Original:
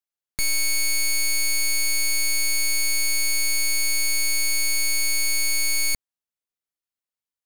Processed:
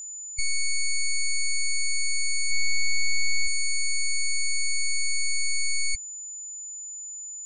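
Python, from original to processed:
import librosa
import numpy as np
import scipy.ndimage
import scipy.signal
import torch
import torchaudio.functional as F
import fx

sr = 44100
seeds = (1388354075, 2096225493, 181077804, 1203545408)

y = fx.spec_gate(x, sr, threshold_db=-15, keep='strong')
y = fx.comb(y, sr, ms=4.9, depth=0.69, at=(2.5, 3.46), fade=0.02)
y = y + 10.0 ** (-35.0 / 20.0) * np.sin(2.0 * np.pi * 7000.0 * np.arange(len(y)) / sr)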